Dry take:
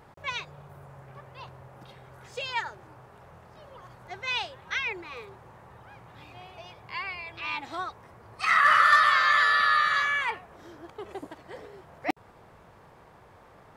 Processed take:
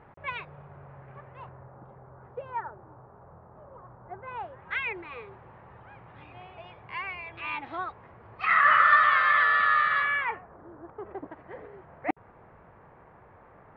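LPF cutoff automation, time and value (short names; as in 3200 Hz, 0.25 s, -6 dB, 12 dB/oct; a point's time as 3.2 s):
LPF 24 dB/oct
1.25 s 2500 Hz
1.87 s 1300 Hz
4.35 s 1300 Hz
4.78 s 2800 Hz
10.13 s 2800 Hz
10.67 s 1300 Hz
11.45 s 2200 Hz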